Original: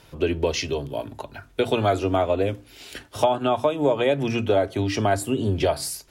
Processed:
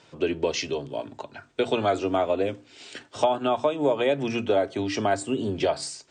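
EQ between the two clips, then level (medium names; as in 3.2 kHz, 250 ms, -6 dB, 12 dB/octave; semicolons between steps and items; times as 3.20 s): high-pass 160 Hz 12 dB/octave; brick-wall FIR low-pass 9 kHz; -2.0 dB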